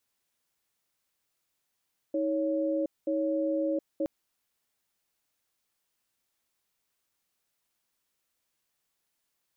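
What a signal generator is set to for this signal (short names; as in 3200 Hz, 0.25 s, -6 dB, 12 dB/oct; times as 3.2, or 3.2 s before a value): cadence 317 Hz, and 556 Hz, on 0.72 s, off 0.21 s, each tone -28.5 dBFS 1.92 s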